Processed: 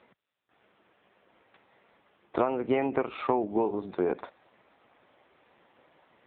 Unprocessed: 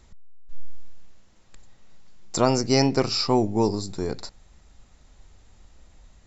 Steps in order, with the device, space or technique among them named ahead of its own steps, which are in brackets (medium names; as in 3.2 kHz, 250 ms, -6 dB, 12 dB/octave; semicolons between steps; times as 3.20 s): voicemail (band-pass 360–2800 Hz; compression 12:1, threshold -29 dBFS, peak gain reduction 14.5 dB; trim +7.5 dB; AMR-NB 5.9 kbps 8 kHz)